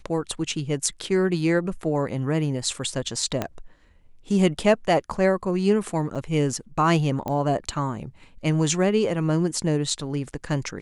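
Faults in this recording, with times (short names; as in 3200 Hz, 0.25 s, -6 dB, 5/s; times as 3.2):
3.42 pop -11 dBFS
6.15–6.16 gap 5.9 ms
7.28 pop -16 dBFS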